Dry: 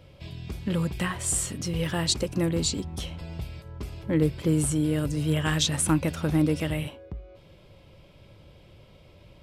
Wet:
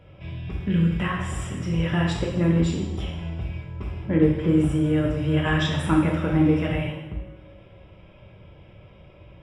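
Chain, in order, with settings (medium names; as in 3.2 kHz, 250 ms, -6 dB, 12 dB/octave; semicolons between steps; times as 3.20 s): Savitzky-Golay filter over 25 samples; time-frequency box 0.68–0.92 s, 490–1400 Hz -10 dB; two-slope reverb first 0.92 s, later 3 s, from -24 dB, DRR -2.5 dB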